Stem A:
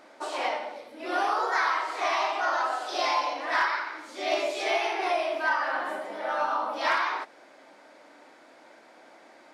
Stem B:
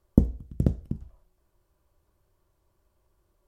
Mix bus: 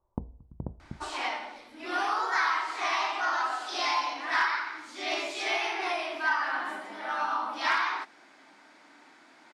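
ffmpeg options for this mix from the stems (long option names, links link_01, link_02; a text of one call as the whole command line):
ffmpeg -i stem1.wav -i stem2.wav -filter_complex "[0:a]lowpass=10000,equalizer=frequency=540:width=2:gain=-14,adelay=800,volume=0.5dB[link_01];[1:a]acompressor=threshold=-26dB:ratio=2.5,lowpass=frequency=940:width_type=q:width=4.5,volume=-8.5dB[link_02];[link_01][link_02]amix=inputs=2:normalize=0" out.wav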